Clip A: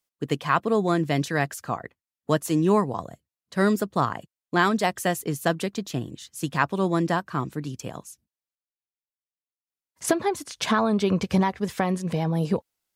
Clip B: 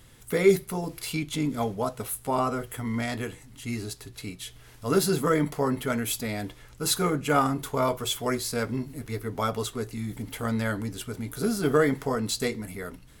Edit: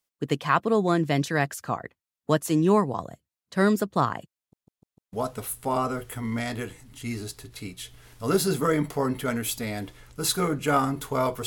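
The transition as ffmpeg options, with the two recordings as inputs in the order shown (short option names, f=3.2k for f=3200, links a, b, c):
-filter_complex "[0:a]apad=whole_dur=11.46,atrim=end=11.46,asplit=5[a][b][c][d][e];[a]atrim=end=4.532[f];[b]atrim=start=4.378:end=4.532[g];[c]atrim=start=4.378:end=4.532[h];[d]atrim=start=4.378:end=4.532[i];[e]atrim=start=4.378:end=4.532[j];[1:a]atrim=start=1.748:end=8.08[k];[f][g]acrossfade=d=0.004:c1=hsin:c2=hsin[l];[l][h]acrossfade=d=0.004:c1=hsin:c2=hsin[m];[m][i]acrossfade=d=0.004:c1=hsin:c2=hsin[n];[n][j]acrossfade=d=0.004:c1=hsin:c2=hsin[o];[o][k]acrossfade=d=0.004:c1=hsin:c2=hsin"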